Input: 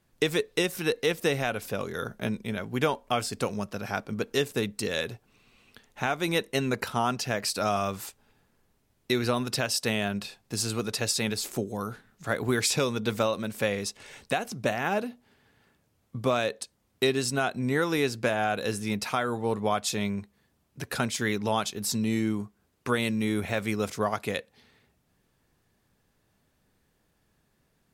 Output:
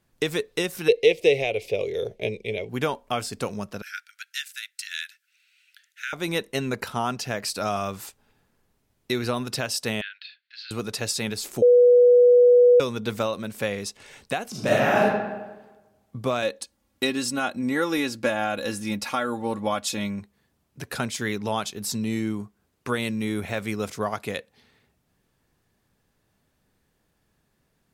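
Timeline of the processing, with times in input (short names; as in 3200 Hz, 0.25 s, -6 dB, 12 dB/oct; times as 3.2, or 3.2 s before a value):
0.88–2.69 EQ curve 110 Hz 0 dB, 240 Hz -10 dB, 430 Hz +11 dB, 630 Hz +4 dB, 1500 Hz -23 dB, 2200 Hz +9 dB, 15000 Hz -13 dB
3.82–6.13 steep high-pass 1400 Hz 96 dB/oct
10.01–10.71 Chebyshev band-pass 1500–4400 Hz, order 4
11.62–12.8 bleep 489 Hz -11 dBFS
14.5–15.03 reverb throw, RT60 1.2 s, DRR -7 dB
16.42–20.2 comb 3.6 ms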